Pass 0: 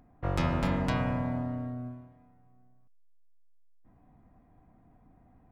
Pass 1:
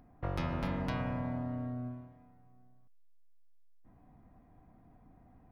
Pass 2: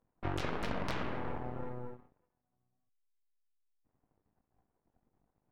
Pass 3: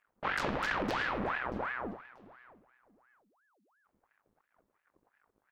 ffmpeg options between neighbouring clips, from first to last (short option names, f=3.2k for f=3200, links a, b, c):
-af "equalizer=f=7.6k:w=4:g=-14,acompressor=threshold=-36dB:ratio=2"
-af "flanger=delay=19:depth=3.5:speed=1.7,aeval=exprs='0.0596*(cos(1*acos(clip(val(0)/0.0596,-1,1)))-cos(1*PI/2))+0.0188*(cos(3*acos(clip(val(0)/0.0596,-1,1)))-cos(3*PI/2))+0.00841*(cos(8*acos(clip(val(0)/0.0596,-1,1)))-cos(8*PI/2))':c=same,volume=5dB"
-af "aecho=1:1:636|1272:0.0944|0.0198,aeval=exprs='val(0)*sin(2*PI*960*n/s+960*0.8/2.9*sin(2*PI*2.9*n/s))':c=same,volume=4.5dB"